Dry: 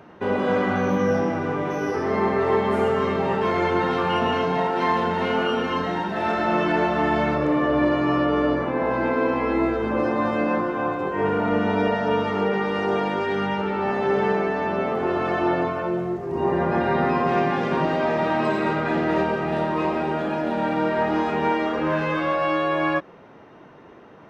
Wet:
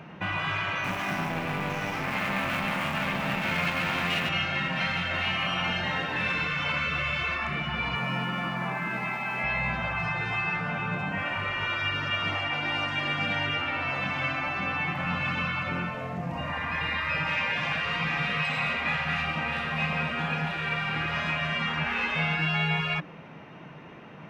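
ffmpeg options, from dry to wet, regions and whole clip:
-filter_complex "[0:a]asettb=1/sr,asplit=3[a][b][c];[a]atrim=end=0.844[d];[b]atrim=start=0.84:end=4.29,asetpts=PTS-STARTPTS,afade=t=in:d=0.004:c=qsin,afade=t=out:st=3.446:d=0.004:c=qsin,lowshelf=f=140:g=-12,aeval=exprs='max(val(0),0)':c=same,acrusher=bits=7:mode=log:mix=0:aa=0.000001[e];[c]atrim=start=4.286[f];[d][e]acrossfade=d=0.004:c1=hsin:c2=qsin[g];[g][f]acrossfade=d=0.004:c1=qsin:c2=hsin,asettb=1/sr,asplit=3[h][i][j];[h]atrim=end=7.954[k];[i]atrim=start=7.95:end=9.44,asetpts=PTS-STARTPTS,afade=t=in:d=0.004:c=qsin,afade=t=out:st=1.486:d=0.004:c=qsin,highpass=200,equalizer=f=4.1k:t=o:w=1.6:g=-5.5,aeval=exprs='sgn(val(0))*max(abs(val(0))-0.00266,0)':c=same[l];[j]atrim=start=9.436[m];[k][l]acrossfade=d=0.004:c1=hsin:c2=qsin[n];[n][m]acrossfade=d=0.004:c1=qsin:c2=hsin,bandreject=f=60:t=h:w=6,bandreject=f=120:t=h:w=6,bandreject=f=180:t=h:w=6,bandreject=f=240:t=h:w=6,bandreject=f=300:t=h:w=6,afftfilt=real='re*lt(hypot(re,im),0.158)':imag='im*lt(hypot(re,im),0.158)':win_size=1024:overlap=0.75,equalizer=f=160:t=o:w=0.67:g=11,equalizer=f=400:t=o:w=0.67:g=-5,equalizer=f=2.5k:t=o:w=0.67:g=10"

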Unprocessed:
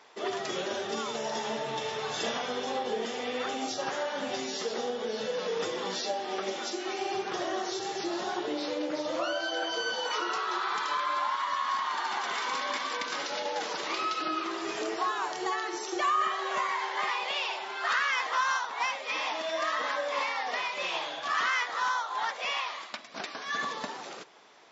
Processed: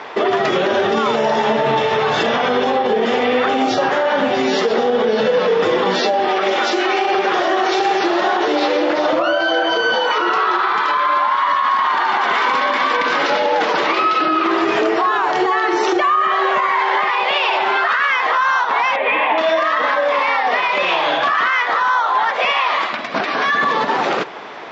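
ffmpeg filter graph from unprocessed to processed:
-filter_complex "[0:a]asettb=1/sr,asplit=3[a][b][c];[a]atrim=end=6.284[d];[b]atrim=start=6.28:end=9.13,asetpts=PTS-STARTPTS,afade=t=in:d=0.004:c=qsin,afade=t=out:st=2.846:d=0.004:c=qsin,highpass=f=580:p=1,aecho=1:1:761:0.473,atrim=end_sample=125685[e];[c]atrim=start=9.126[f];[d][e]acrossfade=d=0.004:c1=hsin:c2=qsin[g];[g][f]acrossfade=d=0.004:c1=qsin:c2=hsin,asettb=1/sr,asplit=3[h][i][j];[h]atrim=end=18.964[k];[i]atrim=start=18.96:end=19.38,asetpts=PTS-STARTPTS,afade=t=in:d=0.004:c=qsin,afade=t=out:st=0.416:d=0.004:c=qsin,lowpass=f=2.8k:w=0.5412,lowpass=f=2.8k:w=1.3066,equalizer=f=1.3k:w=7.7:g=-11.5[l];[j]atrim=start=19.376[m];[k][l]acrossfade=d=0.004:c1=hsin:c2=qsin[n];[n][m]acrossfade=d=0.004:c1=qsin:c2=hsin,lowpass=2.6k,acompressor=threshold=-36dB:ratio=6,alimiter=level_in=32.5dB:limit=-1dB:release=50:level=0:latency=1,volume=-7dB"

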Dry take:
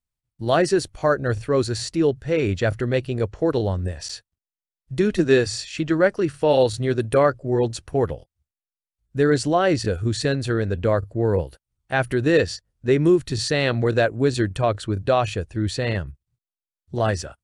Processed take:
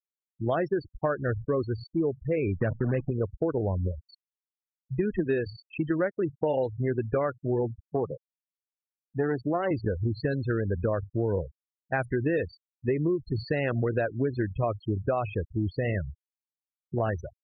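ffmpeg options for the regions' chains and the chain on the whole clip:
-filter_complex "[0:a]asettb=1/sr,asplit=3[a][b][c];[a]atrim=end=2.574[d];[b]atrim=start=2.57:end=3.11,asetpts=PTS-STARTPTS,afade=t=in:d=0.004:c=qsin,afade=t=out:st=0.536:d=0.004:c=qsin,equalizer=f=170:t=o:w=1.2:g=8.5,acrusher=bits=5:dc=4:mix=0:aa=0.000001[e];[c]atrim=start=3.106[f];[d][e]acrossfade=d=0.004:c1=hsin:c2=qsin[g];[g][f]acrossfade=d=0.004:c1=qsin:c2=hsin,asettb=1/sr,asplit=3[h][i][j];[h]atrim=end=7.854[k];[i]atrim=start=7.85:end=9.71,asetpts=PTS-STARTPTS,afade=t=in:d=0.004:c=qsin,afade=t=out:st=1.856:d=0.004:c=qsin,aeval=exprs='if(lt(val(0),0),0.447*val(0),val(0))':c=same,highpass=f=120:w=0.5412,highpass=f=120:w=1.3066,lowshelf=f=340:g=2.5[l];[j]atrim=start=9.706[m];[k][l]acrossfade=d=0.004:c1=hsin:c2=qsin[n];[n][m]acrossfade=d=0.004:c1=qsin:c2=hsin,acrossover=split=2800[o][p];[p]acompressor=threshold=-37dB:ratio=4:attack=1:release=60[q];[o][q]amix=inputs=2:normalize=0,afftfilt=real='re*gte(hypot(re,im),0.0631)':imag='im*gte(hypot(re,im),0.0631)':win_size=1024:overlap=0.75,acompressor=threshold=-22dB:ratio=6,volume=-1.5dB"

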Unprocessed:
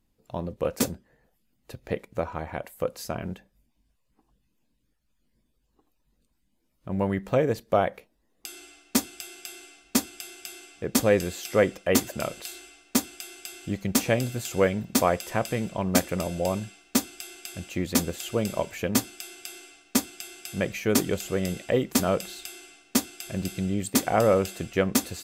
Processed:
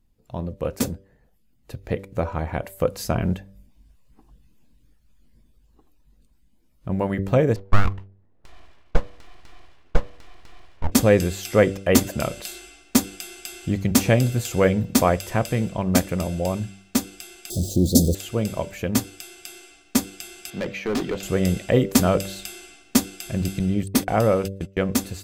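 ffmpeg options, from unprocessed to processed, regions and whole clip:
-filter_complex "[0:a]asettb=1/sr,asplit=3[a][b][c];[a]atrim=end=7.564[d];[b]atrim=start=7.56:end=10.92,asetpts=PTS-STARTPTS,afade=t=in:d=0.004:c=qsin,afade=t=out:st=3.356:d=0.004:c=qsin,lowpass=1.5k,aeval=exprs='abs(val(0))':c=same[e];[c]atrim=start=10.916[f];[d][e]acrossfade=d=0.004:c1=hsin:c2=qsin[g];[g][f]acrossfade=d=0.004:c1=qsin:c2=hsin,asettb=1/sr,asplit=3[h][i][j];[h]atrim=end=17.504[k];[i]atrim=start=17.5:end=18.15,asetpts=PTS-STARTPTS,afade=t=in:d=0.004:c=qsin,afade=t=out:st=0.646:d=0.004:c=qsin,aeval=exprs='val(0)+0.5*0.02*sgn(val(0))':c=same,asuperstop=centerf=1600:order=12:qfactor=0.51,acontrast=38[l];[j]atrim=start=18.146[m];[k][l]acrossfade=d=0.004:c1=hsin:c2=qsin[n];[n][m]acrossfade=d=0.004:c1=qsin:c2=hsin,asettb=1/sr,asplit=3[o][p][q];[o]atrim=end=20.504[r];[p]atrim=start=20.5:end=21.23,asetpts=PTS-STARTPTS,afade=t=in:d=0.004:c=qsin,afade=t=out:st=0.726:d=0.004:c=qsin,acrossover=split=190 4800:gain=0.178 1 0.141[s][t][u];[s][t][u]amix=inputs=3:normalize=0,asoftclip=type=hard:threshold=-25.5dB[v];[q]atrim=start=21.226[w];[r][v]acrossfade=d=0.004:c1=hsin:c2=qsin[x];[x][w]acrossfade=d=0.004:c1=qsin:c2=hsin,asettb=1/sr,asplit=3[y][z][aa];[y]atrim=end=23.594[ab];[z]atrim=start=23.59:end=24.82,asetpts=PTS-STARTPTS,afade=t=in:d=0.004:c=qsin,afade=t=out:st=1.226:d=0.004:c=qsin,bandreject=f=7.2k:w=7.5,agate=range=-30dB:threshold=-33dB:ratio=16:release=100:detection=peak[ac];[aa]atrim=start=24.816[ad];[ab][ac]acrossfade=d=0.004:c1=hsin:c2=qsin[ae];[ae][ad]acrossfade=d=0.004:c1=qsin:c2=hsin,lowshelf=f=160:g=10.5,bandreject=f=97.4:t=h:w=4,bandreject=f=194.8:t=h:w=4,bandreject=f=292.2:t=h:w=4,bandreject=f=389.6:t=h:w=4,bandreject=f=487:t=h:w=4,bandreject=f=584.4:t=h:w=4,dynaudnorm=f=450:g=11:m=11.5dB,volume=-1dB"

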